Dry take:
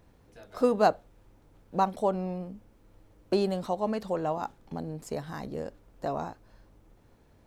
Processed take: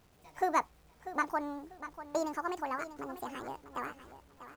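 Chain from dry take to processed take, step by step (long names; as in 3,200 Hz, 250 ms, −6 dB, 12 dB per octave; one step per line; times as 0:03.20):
gliding playback speed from 147% → 180%
bit reduction 10 bits
repeating echo 643 ms, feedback 27%, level −12.5 dB
level −6 dB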